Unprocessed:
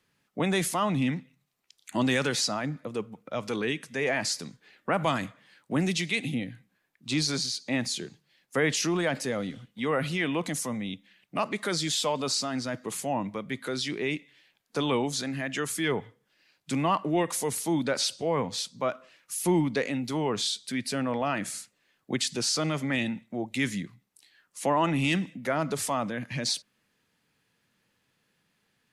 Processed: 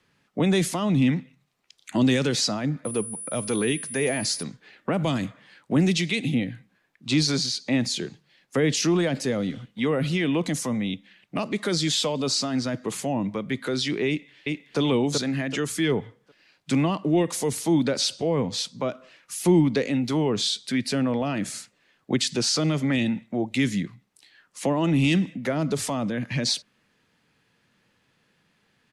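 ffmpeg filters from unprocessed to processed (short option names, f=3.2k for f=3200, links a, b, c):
-filter_complex "[0:a]asettb=1/sr,asplit=3[a][b][c];[a]atrim=end=2.854[d];[b]atrim=start=2.85:end=4.43,asetpts=PTS-STARTPTS,afade=t=in:d=0.004:c=qsin,afade=t=out:st=1.576:d=0.004:c=qsin,aeval=exprs='val(0)+0.0224*sin(2*PI*9800*n/s)':c=same[e];[c]atrim=start=4.426[f];[d][e]acrossfade=d=0.004:c1=hsin:c2=qsin[g];[g][f]acrossfade=d=0.004:c1=qsin:c2=hsin,asplit=2[h][i];[i]afade=t=in:st=14.08:d=0.01,afade=t=out:st=14.79:d=0.01,aecho=0:1:380|760|1140|1520:0.749894|0.224968|0.0674905|0.0202471[j];[h][j]amix=inputs=2:normalize=0,aemphasis=mode=reproduction:type=75fm,acrossover=split=500|3000[k][l][m];[l]acompressor=threshold=-40dB:ratio=6[n];[k][n][m]amix=inputs=3:normalize=0,highshelf=f=3.4k:g=8,volume=6dB"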